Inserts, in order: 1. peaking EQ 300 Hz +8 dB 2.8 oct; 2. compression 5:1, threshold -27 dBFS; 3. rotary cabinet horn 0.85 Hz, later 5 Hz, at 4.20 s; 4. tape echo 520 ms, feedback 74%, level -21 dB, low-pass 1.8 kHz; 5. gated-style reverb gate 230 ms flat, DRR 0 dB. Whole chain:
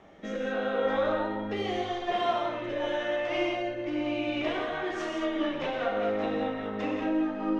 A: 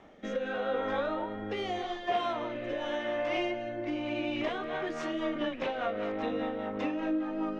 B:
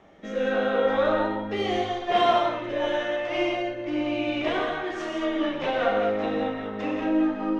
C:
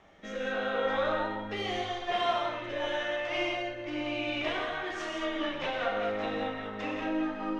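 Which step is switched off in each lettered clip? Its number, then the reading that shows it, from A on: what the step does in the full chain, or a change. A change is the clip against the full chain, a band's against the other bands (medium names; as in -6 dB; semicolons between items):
5, loudness change -3.0 LU; 2, mean gain reduction 3.0 dB; 1, 4 kHz band +4.5 dB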